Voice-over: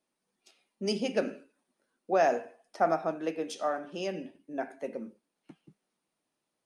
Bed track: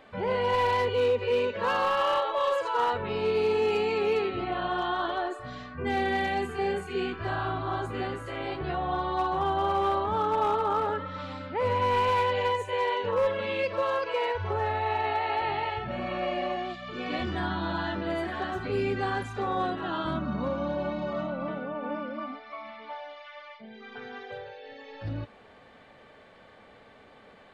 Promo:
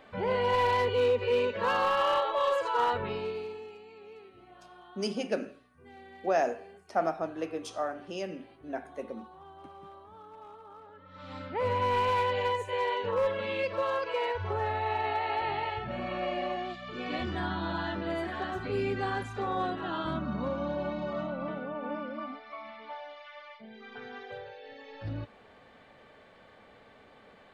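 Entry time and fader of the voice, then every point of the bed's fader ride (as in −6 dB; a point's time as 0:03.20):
4.15 s, −2.0 dB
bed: 0:03.04 −1 dB
0:03.79 −23.5 dB
0:10.92 −23.5 dB
0:11.37 −2.5 dB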